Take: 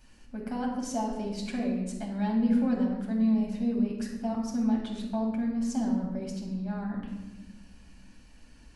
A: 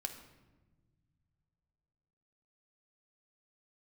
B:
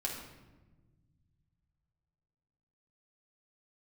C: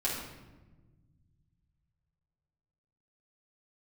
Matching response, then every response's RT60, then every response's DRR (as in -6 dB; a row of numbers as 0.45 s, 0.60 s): B; no single decay rate, no single decay rate, no single decay rate; 5.0 dB, -2.0 dB, -7.0 dB